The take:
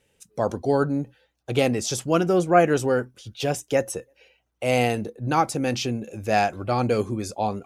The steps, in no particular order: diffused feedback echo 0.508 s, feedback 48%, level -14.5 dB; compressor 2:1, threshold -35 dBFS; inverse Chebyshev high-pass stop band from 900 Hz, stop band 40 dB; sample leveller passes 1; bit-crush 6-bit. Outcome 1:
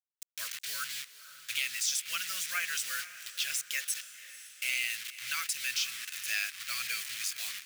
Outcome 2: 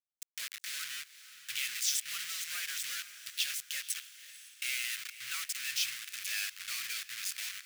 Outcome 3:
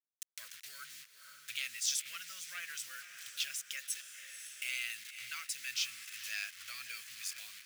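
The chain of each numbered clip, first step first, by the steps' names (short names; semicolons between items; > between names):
bit-crush > inverse Chebyshev high-pass > compressor > sample leveller > diffused feedback echo; compressor > bit-crush > diffused feedback echo > sample leveller > inverse Chebyshev high-pass; sample leveller > bit-crush > diffused feedback echo > compressor > inverse Chebyshev high-pass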